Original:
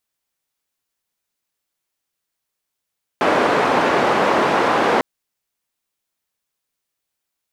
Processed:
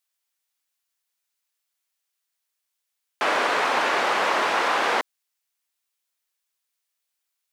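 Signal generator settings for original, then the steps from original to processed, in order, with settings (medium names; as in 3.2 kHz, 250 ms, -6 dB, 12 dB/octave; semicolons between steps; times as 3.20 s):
noise band 260–1000 Hz, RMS -16.5 dBFS 1.80 s
high-pass 1.4 kHz 6 dB/octave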